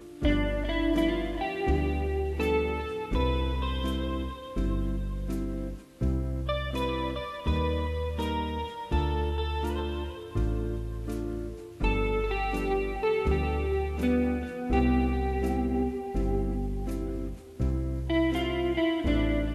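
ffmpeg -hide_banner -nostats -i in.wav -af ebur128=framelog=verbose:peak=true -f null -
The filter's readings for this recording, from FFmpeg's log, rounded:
Integrated loudness:
  I:         -29.7 LUFS
  Threshold: -39.8 LUFS
Loudness range:
  LRA:         4.0 LU
  Threshold: -50.1 LUFS
  LRA low:   -32.0 LUFS
  LRA high:  -28.0 LUFS
True peak:
  Peak:      -13.9 dBFS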